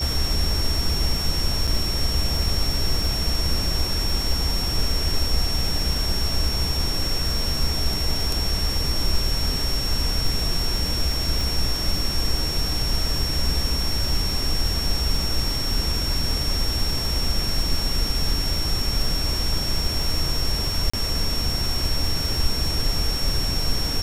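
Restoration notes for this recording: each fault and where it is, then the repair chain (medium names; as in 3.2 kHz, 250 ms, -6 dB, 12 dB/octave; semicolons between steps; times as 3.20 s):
crackle 51 per s -29 dBFS
whine 5.5 kHz -26 dBFS
1.67–1.68 s: dropout 5.9 ms
11.41 s: pop
20.90–20.93 s: dropout 35 ms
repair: de-click; band-stop 5.5 kHz, Q 30; interpolate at 1.67 s, 5.9 ms; interpolate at 20.90 s, 35 ms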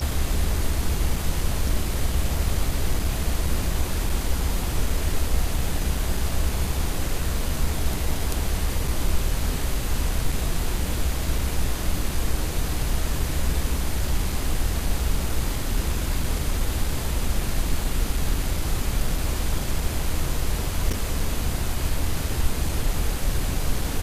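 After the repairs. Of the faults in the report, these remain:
nothing left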